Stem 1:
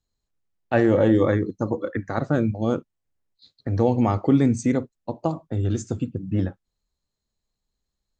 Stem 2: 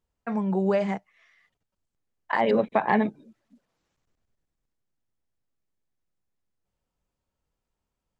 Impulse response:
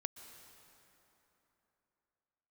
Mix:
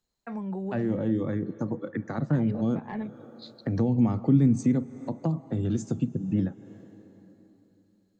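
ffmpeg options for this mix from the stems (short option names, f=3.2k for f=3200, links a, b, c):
-filter_complex "[0:a]highpass=f=140:w=0.5412,highpass=f=140:w=1.3066,dynaudnorm=f=300:g=13:m=7dB,volume=-1dB,asplit=2[a][b];[b]volume=-8.5dB[c];[1:a]acontrast=73,volume=-12.5dB[d];[2:a]atrim=start_sample=2205[e];[c][e]afir=irnorm=-1:irlink=0[f];[a][d][f]amix=inputs=3:normalize=0,acrossover=split=210[g][h];[h]acompressor=threshold=-36dB:ratio=4[i];[g][i]amix=inputs=2:normalize=0"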